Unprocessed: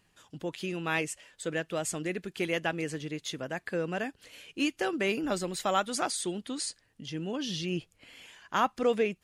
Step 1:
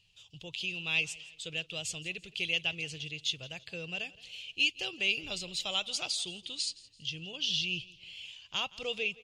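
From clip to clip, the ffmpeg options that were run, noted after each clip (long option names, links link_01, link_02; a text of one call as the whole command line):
ffmpeg -i in.wav -af "firequalizer=gain_entry='entry(120,0);entry(240,-20);entry(440,-12);entry(1700,-18);entry(2700,9);entry(11000,-12)':delay=0.05:min_phase=1,aecho=1:1:168|336|504:0.0891|0.0365|0.015" out.wav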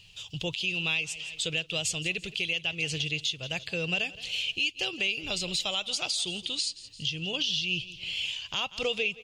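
ffmpeg -i in.wav -filter_complex "[0:a]asplit=2[link_01][link_02];[link_02]acompressor=threshold=-40dB:ratio=6,volume=-0.5dB[link_03];[link_01][link_03]amix=inputs=2:normalize=0,alimiter=level_in=2.5dB:limit=-24dB:level=0:latency=1:release=378,volume=-2.5dB,volume=8dB" out.wav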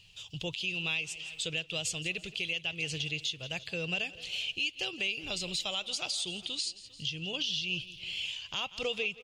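ffmpeg -i in.wav -filter_complex "[0:a]asplit=2[link_01][link_02];[link_02]adelay=400,highpass=300,lowpass=3400,asoftclip=type=hard:threshold=-27dB,volume=-19dB[link_03];[link_01][link_03]amix=inputs=2:normalize=0,volume=-4dB" out.wav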